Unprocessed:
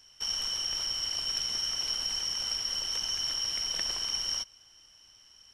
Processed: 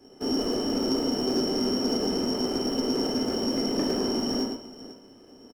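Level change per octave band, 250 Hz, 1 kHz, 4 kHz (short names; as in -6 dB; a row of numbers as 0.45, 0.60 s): +32.0, +11.5, -3.0 dB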